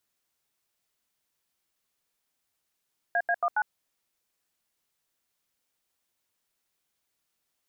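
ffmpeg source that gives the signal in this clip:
ffmpeg -f lavfi -i "aevalsrc='0.0562*clip(min(mod(t,0.138),0.056-mod(t,0.138))/0.002,0,1)*(eq(floor(t/0.138),0)*(sin(2*PI*697*mod(t,0.138))+sin(2*PI*1633*mod(t,0.138)))+eq(floor(t/0.138),1)*(sin(2*PI*697*mod(t,0.138))+sin(2*PI*1633*mod(t,0.138)))+eq(floor(t/0.138),2)*(sin(2*PI*697*mod(t,0.138))+sin(2*PI*1209*mod(t,0.138)))+eq(floor(t/0.138),3)*(sin(2*PI*852*mod(t,0.138))+sin(2*PI*1477*mod(t,0.138))))':duration=0.552:sample_rate=44100" out.wav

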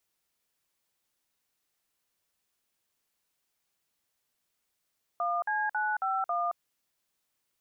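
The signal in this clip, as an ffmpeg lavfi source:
ffmpeg -f lavfi -i "aevalsrc='0.0335*clip(min(mod(t,0.273),0.222-mod(t,0.273))/0.002,0,1)*(eq(floor(t/0.273),0)*(sin(2*PI*697*mod(t,0.273))+sin(2*PI*1209*mod(t,0.273)))+eq(floor(t/0.273),1)*(sin(2*PI*852*mod(t,0.273))+sin(2*PI*1633*mod(t,0.273)))+eq(floor(t/0.273),2)*(sin(2*PI*852*mod(t,0.273))+sin(2*PI*1477*mod(t,0.273)))+eq(floor(t/0.273),3)*(sin(2*PI*770*mod(t,0.273))+sin(2*PI*1336*mod(t,0.273)))+eq(floor(t/0.273),4)*(sin(2*PI*697*mod(t,0.273))+sin(2*PI*1209*mod(t,0.273))))':duration=1.365:sample_rate=44100" out.wav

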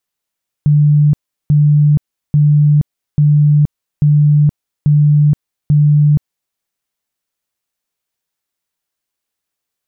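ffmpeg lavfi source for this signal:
ffmpeg -f lavfi -i "aevalsrc='0.501*sin(2*PI*148*mod(t,0.84))*lt(mod(t,0.84),70/148)':duration=5.88:sample_rate=44100" out.wav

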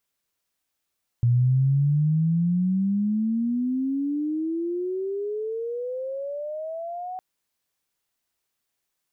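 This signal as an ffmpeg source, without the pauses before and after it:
ffmpeg -f lavfi -i "aevalsrc='pow(10,(-16-14.5*t/5.96)/20)*sin(2*PI*118*5.96/(32*log(2)/12)*(exp(32*log(2)/12*t/5.96)-1))':duration=5.96:sample_rate=44100" out.wav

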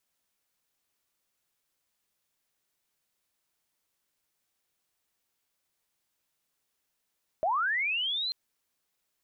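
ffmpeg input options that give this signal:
ffmpeg -f lavfi -i "aevalsrc='pow(10,(-24-5*t/0.89)/20)*sin(2*PI*(600*t+3600*t*t/(2*0.89)))':duration=0.89:sample_rate=44100" out.wav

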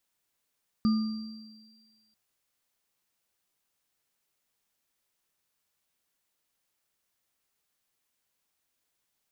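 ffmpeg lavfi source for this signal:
ffmpeg -f lavfi -i "aevalsrc='0.106*pow(10,-3*t/1.35)*sin(2*PI*219*t)+0.0158*pow(10,-3*t/0.81)*sin(2*PI*1210*t)+0.0119*pow(10,-3*t/2.53)*sin(2*PI*4720*t)':duration=1.29:sample_rate=44100" out.wav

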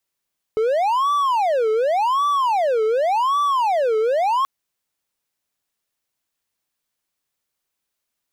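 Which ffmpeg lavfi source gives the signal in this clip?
ffmpeg -f lavfi -i "aevalsrc='0.2*(1-4*abs(mod((796.5*t-363.5/(2*PI*0.88)*sin(2*PI*0.88*t))+0.25,1)-0.5))':duration=3.88:sample_rate=44100" out.wav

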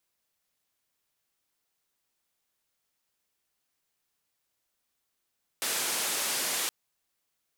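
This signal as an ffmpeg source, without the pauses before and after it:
ffmpeg -f lavfi -i "anoisesrc=color=white:duration=1.07:sample_rate=44100:seed=1,highpass=frequency=250,lowpass=frequency=12000,volume=-23dB" out.wav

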